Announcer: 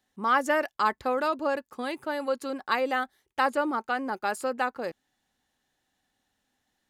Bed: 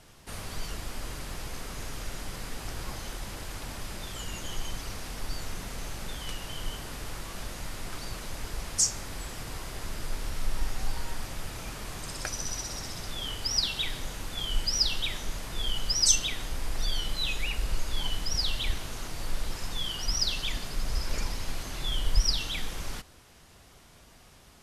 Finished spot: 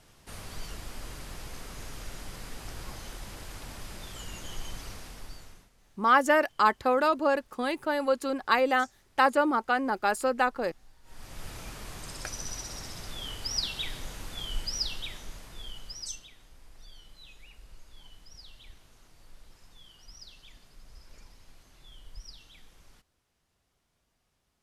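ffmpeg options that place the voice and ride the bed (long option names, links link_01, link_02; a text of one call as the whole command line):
ffmpeg -i stem1.wav -i stem2.wav -filter_complex "[0:a]adelay=5800,volume=2.5dB[link_01];[1:a]volume=19.5dB,afade=type=out:start_time=4.86:duration=0.84:silence=0.0707946,afade=type=in:start_time=11.03:duration=0.46:silence=0.0668344,afade=type=out:start_time=14.27:duration=2.02:silence=0.125893[link_02];[link_01][link_02]amix=inputs=2:normalize=0" out.wav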